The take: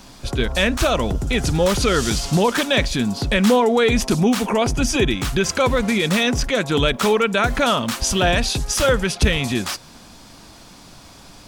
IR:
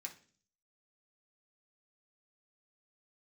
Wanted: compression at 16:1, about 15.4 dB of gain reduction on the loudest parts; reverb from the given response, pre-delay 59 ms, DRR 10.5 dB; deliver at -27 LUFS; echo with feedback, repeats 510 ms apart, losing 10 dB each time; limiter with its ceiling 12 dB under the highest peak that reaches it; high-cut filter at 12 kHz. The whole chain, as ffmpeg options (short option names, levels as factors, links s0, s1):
-filter_complex "[0:a]lowpass=12000,acompressor=threshold=0.0501:ratio=16,alimiter=level_in=1.5:limit=0.0631:level=0:latency=1,volume=0.668,aecho=1:1:510|1020|1530|2040:0.316|0.101|0.0324|0.0104,asplit=2[s0][s1];[1:a]atrim=start_sample=2205,adelay=59[s2];[s1][s2]afir=irnorm=-1:irlink=0,volume=0.447[s3];[s0][s3]amix=inputs=2:normalize=0,volume=2.66"